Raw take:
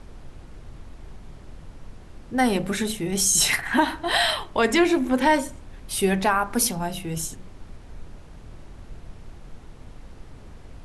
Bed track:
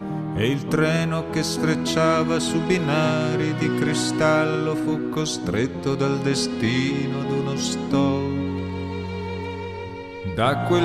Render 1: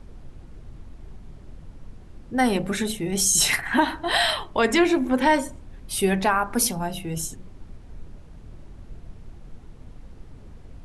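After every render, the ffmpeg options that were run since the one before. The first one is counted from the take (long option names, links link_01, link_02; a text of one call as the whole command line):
ffmpeg -i in.wav -af "afftdn=noise_reduction=6:noise_floor=-45" out.wav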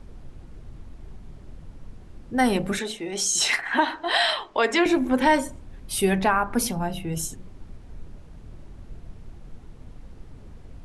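ffmpeg -i in.wav -filter_complex "[0:a]asettb=1/sr,asplit=3[link_01][link_02][link_03];[link_01]atrim=end=2.794[link_04];[link_02]atrim=start=2.79:end=4.86,asetpts=PTS-STARTPTS,afade=type=in:duration=0.004:curve=qsin,afade=type=out:start_time=2.066:duration=0.004:curve=qsin,acrossover=split=290 7900:gain=0.126 1 0.0891[link_05][link_06][link_07];[link_05][link_06][link_07]amix=inputs=3:normalize=0[link_08];[link_03]atrim=start=4.856[link_09];[link_04][link_08]acrossfade=duration=0.004:curve1=hsin:curve2=qsin[link_10];[link_10][link_09]acrossfade=duration=0.004:curve1=qsin:curve2=hsin,asettb=1/sr,asplit=3[link_11][link_12][link_13];[link_11]atrim=end=6.184[link_14];[link_12]atrim=start=6.18:end=7.13,asetpts=PTS-STARTPTS,afade=type=in:duration=0.004:curve=qsin,afade=type=out:start_time=0.946:duration=0.004:curve=qsin,bass=frequency=250:gain=2,treble=frequency=4000:gain=-6[link_15];[link_13]atrim=start=7.126[link_16];[link_14][link_15]acrossfade=duration=0.004:curve1=hsin:curve2=qsin[link_17];[link_17][link_16]acrossfade=duration=0.004:curve1=qsin:curve2=hsin" out.wav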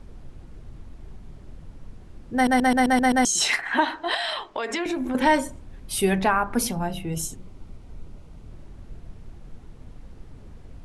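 ffmpeg -i in.wav -filter_complex "[0:a]asettb=1/sr,asplit=3[link_01][link_02][link_03];[link_01]atrim=end=4.144[link_04];[link_02]atrim=start=4.14:end=5.15,asetpts=PTS-STARTPTS,afade=type=in:duration=0.004:curve=qsin,afade=type=out:start_time=1.006:duration=0.004:curve=qsin,acompressor=threshold=-23dB:ratio=10:attack=3.2:release=140:knee=1:detection=peak[link_05];[link_03]atrim=start=5.146[link_06];[link_04][link_05]acrossfade=duration=0.004:curve1=hsin:curve2=qsin[link_07];[link_07][link_06]acrossfade=duration=0.004:curve1=qsin:curve2=hsin,asettb=1/sr,asplit=3[link_08][link_09][link_10];[link_08]atrim=end=7.044[link_11];[link_09]atrim=start=7.04:end=8.49,asetpts=PTS-STARTPTS,afade=type=in:duration=0.004:curve=qsin,afade=type=out:start_time=1.446:duration=0.004:curve=qsin,bandreject=frequency=1700:width=7.1[link_12];[link_10]atrim=start=8.486[link_13];[link_11][link_12]acrossfade=duration=0.004:curve1=hsin:curve2=qsin[link_14];[link_14][link_13]acrossfade=duration=0.004:curve1=qsin:curve2=hsin,asplit=8[link_15][link_16][link_17][link_18][link_19][link_20][link_21][link_22];[link_15]atrim=end=2.472[link_23];[link_16]atrim=start=2.338:end=2.472[link_24];[link_17]atrim=start=2.338:end=2.472[link_25];[link_18]atrim=start=2.338:end=2.472[link_26];[link_19]atrim=start=2.338:end=2.472[link_27];[link_20]atrim=start=2.338:end=2.472[link_28];[link_21]atrim=start=2.338:end=2.472[link_29];[link_22]atrim=start=3.248[link_30];[link_23][link_24]acrossfade=duration=0.004:curve1=hsin:curve2=hsin[link_31];[link_31][link_25]acrossfade=duration=0.004:curve1=hsin:curve2=hsin[link_32];[link_32][link_26]acrossfade=duration=0.004:curve1=hsin:curve2=hsin[link_33];[link_33][link_27]acrossfade=duration=0.004:curve1=hsin:curve2=hsin[link_34];[link_34][link_28]acrossfade=duration=0.004:curve1=hsin:curve2=hsin[link_35];[link_35][link_29]acrossfade=duration=0.004:curve1=hsin:curve2=hsin[link_36];[link_36][link_30]acrossfade=duration=0.004:curve1=hsin:curve2=hsin" out.wav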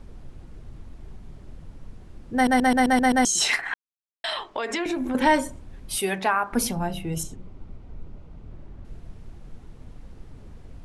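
ffmpeg -i in.wav -filter_complex "[0:a]asettb=1/sr,asplit=3[link_01][link_02][link_03];[link_01]atrim=end=5.984[link_04];[link_02]atrim=start=5.98:end=6.53,asetpts=PTS-STARTPTS,afade=type=in:duration=0.004:curve=qsin,afade=type=out:start_time=0.546:duration=0.004:curve=qsin,highpass=frequency=530:poles=1[link_05];[link_03]atrim=start=6.526[link_06];[link_04][link_05]acrossfade=duration=0.004:curve1=hsin:curve2=qsin[link_07];[link_07][link_06]acrossfade=duration=0.004:curve1=qsin:curve2=hsin,asettb=1/sr,asplit=3[link_08][link_09][link_10];[link_08]atrim=end=7.234[link_11];[link_09]atrim=start=7.23:end=8.85,asetpts=PTS-STARTPTS,afade=type=in:duration=0.004:curve=qsin,afade=type=out:start_time=1.616:duration=0.004:curve=qsin,aemphasis=mode=reproduction:type=75fm[link_12];[link_10]atrim=start=8.846[link_13];[link_11][link_12]acrossfade=duration=0.004:curve1=hsin:curve2=qsin[link_14];[link_14][link_13]acrossfade=duration=0.004:curve1=qsin:curve2=hsin,asplit=3[link_15][link_16][link_17];[link_15]atrim=end=3.74,asetpts=PTS-STARTPTS,afade=type=out:start_time=3.736:duration=0.004:curve=hsin[link_18];[link_16]atrim=start=3.74:end=4.24,asetpts=PTS-STARTPTS,volume=0[link_19];[link_17]atrim=start=4.24,asetpts=PTS-STARTPTS,afade=type=in:duration=0.004:curve=hsin[link_20];[link_18][link_19][link_20]concat=n=3:v=0:a=1" out.wav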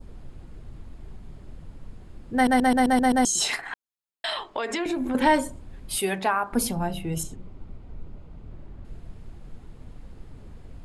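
ffmpeg -i in.wav -af "bandreject=frequency=5800:width=8.9,adynamicequalizer=threshold=0.0112:dfrequency=2000:dqfactor=1:tfrequency=2000:tqfactor=1:attack=5:release=100:ratio=0.375:range=3.5:mode=cutabove:tftype=bell" out.wav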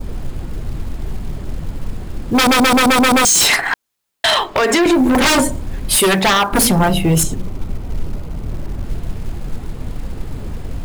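ffmpeg -i in.wav -af "acrusher=bits=7:mode=log:mix=0:aa=0.000001,aeval=exprs='0.355*sin(PI/2*5.01*val(0)/0.355)':channel_layout=same" out.wav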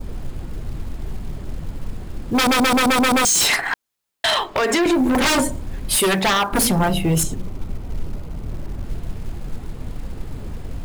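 ffmpeg -i in.wav -af "volume=-4.5dB" out.wav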